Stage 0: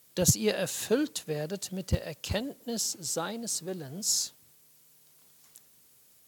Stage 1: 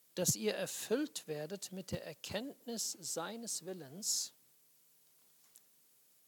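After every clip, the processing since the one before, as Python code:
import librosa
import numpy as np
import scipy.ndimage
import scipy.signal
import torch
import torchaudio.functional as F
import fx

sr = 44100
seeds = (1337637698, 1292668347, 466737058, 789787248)

y = scipy.signal.sosfilt(scipy.signal.butter(2, 170.0, 'highpass', fs=sr, output='sos'), x)
y = F.gain(torch.from_numpy(y), -8.0).numpy()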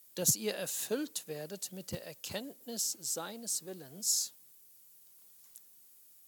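y = fx.high_shelf(x, sr, hz=7200.0, db=11.0)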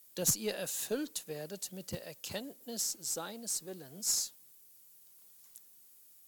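y = fx.diode_clip(x, sr, knee_db=-19.0)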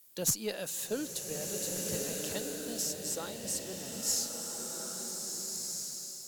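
y = fx.rev_bloom(x, sr, seeds[0], attack_ms=1660, drr_db=0.5)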